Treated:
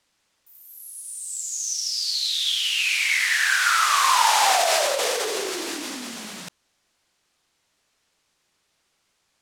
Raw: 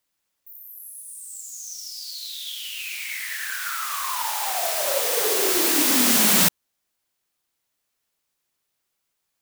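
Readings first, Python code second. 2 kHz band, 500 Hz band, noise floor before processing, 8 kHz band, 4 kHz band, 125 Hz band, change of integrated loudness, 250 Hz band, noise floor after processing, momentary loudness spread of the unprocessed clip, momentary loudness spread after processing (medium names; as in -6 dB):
+6.5 dB, +0.5 dB, -78 dBFS, -1.5 dB, +4.0 dB, under -15 dB, 0.0 dB, -10.5 dB, -72 dBFS, 20 LU, 17 LU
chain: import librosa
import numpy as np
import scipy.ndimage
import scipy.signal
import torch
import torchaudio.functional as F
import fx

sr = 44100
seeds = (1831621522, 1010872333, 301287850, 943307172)

y = fx.over_compress(x, sr, threshold_db=-26.0, ratio=-0.5)
y = scipy.signal.sosfilt(scipy.signal.butter(2, 7200.0, 'lowpass', fs=sr, output='sos'), y)
y = F.gain(torch.from_numpy(y), 7.0).numpy()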